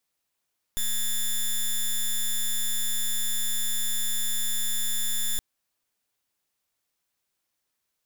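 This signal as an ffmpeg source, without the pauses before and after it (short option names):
-f lavfi -i "aevalsrc='0.0531*(2*lt(mod(3520*t,1),0.1)-1)':d=4.62:s=44100"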